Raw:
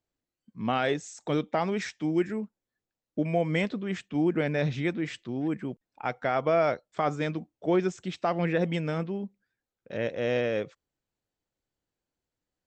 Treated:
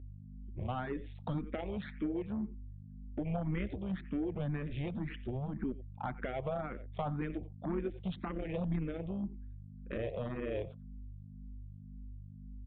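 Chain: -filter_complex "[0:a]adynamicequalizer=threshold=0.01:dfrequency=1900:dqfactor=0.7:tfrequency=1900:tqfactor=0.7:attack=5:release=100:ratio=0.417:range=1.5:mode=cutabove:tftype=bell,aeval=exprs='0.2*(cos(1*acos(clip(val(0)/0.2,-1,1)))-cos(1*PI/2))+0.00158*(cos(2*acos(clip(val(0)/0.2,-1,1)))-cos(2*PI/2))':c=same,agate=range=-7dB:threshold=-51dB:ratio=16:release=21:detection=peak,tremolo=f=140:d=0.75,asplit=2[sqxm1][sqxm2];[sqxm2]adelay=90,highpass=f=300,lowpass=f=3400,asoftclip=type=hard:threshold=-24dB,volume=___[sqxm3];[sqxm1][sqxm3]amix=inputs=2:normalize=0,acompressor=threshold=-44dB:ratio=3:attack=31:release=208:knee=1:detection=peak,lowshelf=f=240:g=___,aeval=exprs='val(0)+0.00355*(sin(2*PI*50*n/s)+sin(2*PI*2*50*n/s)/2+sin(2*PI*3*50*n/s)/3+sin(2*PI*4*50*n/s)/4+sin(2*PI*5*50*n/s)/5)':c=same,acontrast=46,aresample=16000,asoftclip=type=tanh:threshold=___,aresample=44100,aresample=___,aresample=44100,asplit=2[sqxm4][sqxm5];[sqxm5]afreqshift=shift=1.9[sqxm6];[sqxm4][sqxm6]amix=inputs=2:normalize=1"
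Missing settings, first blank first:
-22dB, 11, -25.5dB, 8000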